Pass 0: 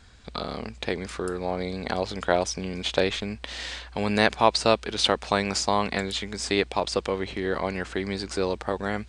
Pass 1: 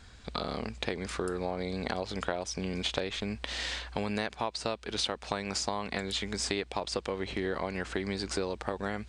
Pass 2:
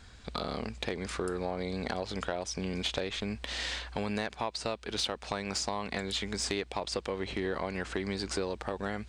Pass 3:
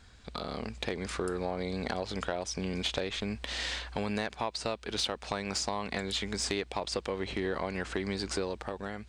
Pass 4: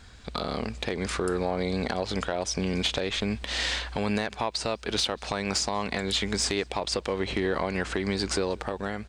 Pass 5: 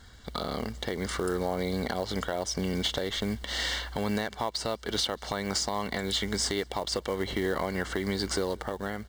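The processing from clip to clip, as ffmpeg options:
-af "acompressor=threshold=0.0398:ratio=12"
-af "asoftclip=type=tanh:threshold=0.119"
-af "dynaudnorm=f=130:g=9:m=1.58,volume=0.668"
-filter_complex "[0:a]alimiter=limit=0.075:level=0:latency=1:release=115,asplit=2[s0][s1];[s1]adelay=192.4,volume=0.0398,highshelf=f=4000:g=-4.33[s2];[s0][s2]amix=inputs=2:normalize=0,volume=2.11"
-af "acrusher=bits=5:mode=log:mix=0:aa=0.000001,asuperstop=centerf=2500:order=12:qfactor=6.3,volume=0.794"

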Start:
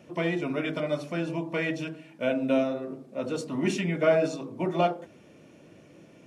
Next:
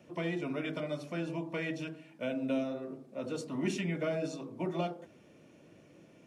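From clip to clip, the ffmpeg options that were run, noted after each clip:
-filter_complex "[0:a]acrossover=split=350|3000[s0][s1][s2];[s1]acompressor=threshold=0.0282:ratio=3[s3];[s0][s3][s2]amix=inputs=3:normalize=0,volume=0.531"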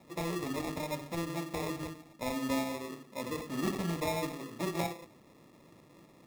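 -af "acrusher=samples=29:mix=1:aa=0.000001"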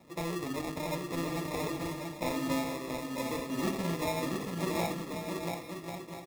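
-af "aecho=1:1:680|1088|1333|1480|1568:0.631|0.398|0.251|0.158|0.1"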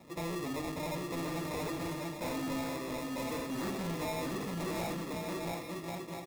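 -af "asoftclip=type=tanh:threshold=0.0168,volume=1.33"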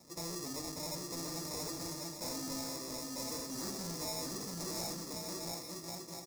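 -af "highshelf=f=4000:t=q:w=3:g=10,volume=0.473"

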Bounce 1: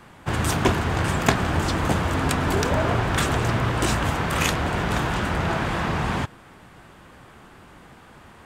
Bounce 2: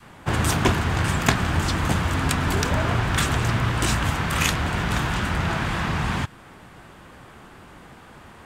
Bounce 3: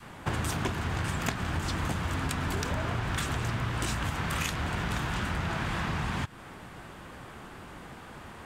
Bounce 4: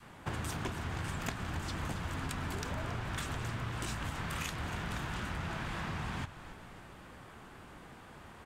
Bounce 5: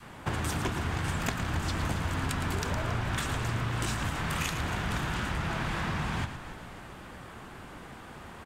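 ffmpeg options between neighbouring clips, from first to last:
-af "adynamicequalizer=threshold=0.0141:dfrequency=500:dqfactor=0.71:tfrequency=500:tqfactor=0.71:attack=5:release=100:ratio=0.375:range=3.5:mode=cutabove:tftype=bell,volume=1.26"
-af "acompressor=threshold=0.0398:ratio=6"
-filter_complex "[0:a]asplit=7[s0][s1][s2][s3][s4][s5][s6];[s1]adelay=275,afreqshift=-57,volume=0.2[s7];[s2]adelay=550,afreqshift=-114,volume=0.112[s8];[s3]adelay=825,afreqshift=-171,volume=0.0624[s9];[s4]adelay=1100,afreqshift=-228,volume=0.0351[s10];[s5]adelay=1375,afreqshift=-285,volume=0.0197[s11];[s6]adelay=1650,afreqshift=-342,volume=0.011[s12];[s0][s7][s8][s9][s10][s11][s12]amix=inputs=7:normalize=0,volume=0.447"
-af "aecho=1:1:112:0.335,volume=2"

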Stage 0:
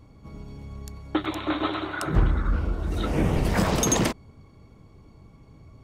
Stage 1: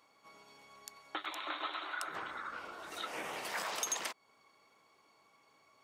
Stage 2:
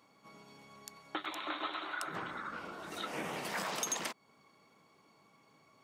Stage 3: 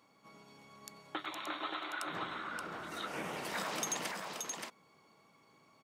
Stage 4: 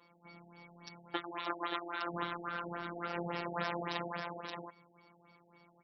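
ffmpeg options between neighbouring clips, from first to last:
-af "highpass=940,acompressor=threshold=0.0112:ratio=2,volume=0.841"
-af "equalizer=f=170:w=0.77:g=13"
-af "aecho=1:1:576:0.631,volume=0.841"
-af "afftfilt=real='hypot(re,im)*cos(PI*b)':imag='0':win_size=1024:overlap=0.75,afftfilt=real='re*lt(b*sr/1024,820*pow(5900/820,0.5+0.5*sin(2*PI*3.6*pts/sr)))':imag='im*lt(b*sr/1024,820*pow(5900/820,0.5+0.5*sin(2*PI*3.6*pts/sr)))':win_size=1024:overlap=0.75,volume=2.11"

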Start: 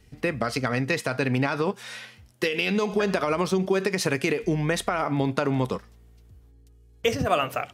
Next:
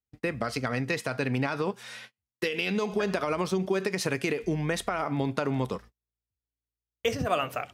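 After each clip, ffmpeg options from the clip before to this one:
-af "agate=range=0.0141:threshold=0.00891:ratio=16:detection=peak,volume=0.631"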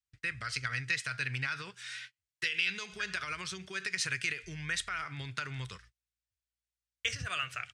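-af "firequalizer=gain_entry='entry(120,0);entry(230,-20);entry(370,-15);entry(530,-18);entry(790,-17);entry(1500,6);entry(8700,6);entry(13000,-15)':delay=0.05:min_phase=1,volume=0.531"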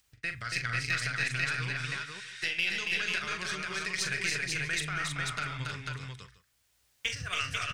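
-filter_complex "[0:a]acompressor=mode=upward:threshold=0.00178:ratio=2.5,aeval=exprs='0.211*(cos(1*acos(clip(val(0)/0.211,-1,1)))-cos(1*PI/2))+0.00596*(cos(8*acos(clip(val(0)/0.211,-1,1)))-cos(8*PI/2))':c=same,asplit=2[s0][s1];[s1]aecho=0:1:42|279|312|319|492|646:0.376|0.631|0.335|0.355|0.708|0.119[s2];[s0][s2]amix=inputs=2:normalize=0"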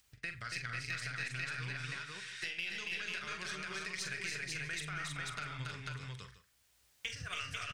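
-filter_complex "[0:a]acompressor=threshold=0.00631:ratio=2,asplit=2[s0][s1];[s1]adelay=47,volume=0.224[s2];[s0][s2]amix=inputs=2:normalize=0"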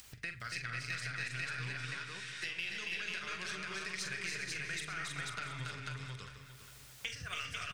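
-af "bandreject=f=50:t=h:w=6,bandreject=f=100:t=h:w=6,bandreject=f=150:t=h:w=6,acompressor=mode=upward:threshold=0.00708:ratio=2.5,aecho=1:1:402|804|1206|1608|2010:0.282|0.124|0.0546|0.024|0.0106"

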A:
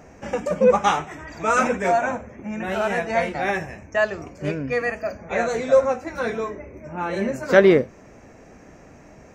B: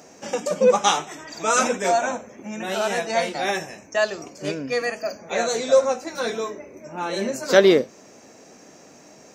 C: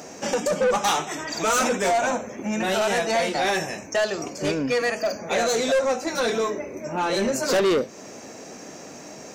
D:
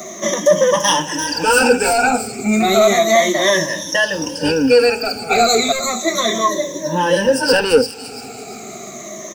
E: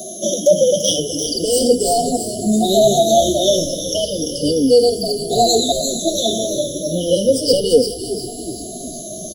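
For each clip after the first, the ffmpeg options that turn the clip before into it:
-af "highpass=220,highshelf=f=2900:t=q:w=1.5:g=9"
-filter_complex "[0:a]asplit=2[s0][s1];[s1]acompressor=threshold=0.0447:ratio=6,volume=1.41[s2];[s0][s2]amix=inputs=2:normalize=0,asoftclip=type=tanh:threshold=0.141"
-filter_complex "[0:a]afftfilt=real='re*pow(10,23/40*sin(2*PI*(1.2*log(max(b,1)*sr/1024/100)/log(2)-(-0.33)*(pts-256)/sr)))':imag='im*pow(10,23/40*sin(2*PI*(1.2*log(max(b,1)*sr/1024/100)/log(2)-(-0.33)*(pts-256)/sr)))':win_size=1024:overlap=0.75,acrossover=split=150|880|4300[s0][s1][s2][s3];[s1]acrusher=bits=7:mix=0:aa=0.000001[s4];[s3]aecho=1:1:342|684|1026|1368:0.708|0.241|0.0818|0.0278[s5];[s0][s4][s2][s5]amix=inputs=4:normalize=0,volume=1.41"
-filter_complex "[0:a]asplit=7[s0][s1][s2][s3][s4][s5][s6];[s1]adelay=367,afreqshift=-71,volume=0.224[s7];[s2]adelay=734,afreqshift=-142,volume=0.127[s8];[s3]adelay=1101,afreqshift=-213,volume=0.0724[s9];[s4]adelay=1468,afreqshift=-284,volume=0.0417[s10];[s5]adelay=1835,afreqshift=-355,volume=0.0237[s11];[s6]adelay=2202,afreqshift=-426,volume=0.0135[s12];[s0][s7][s8][s9][s10][s11][s12]amix=inputs=7:normalize=0,aeval=exprs='val(0)+0.02*sin(2*PI*11000*n/s)':c=same,afftfilt=real='re*(1-between(b*sr/4096,740,2900))':imag='im*(1-between(b*sr/4096,740,2900))':win_size=4096:overlap=0.75"

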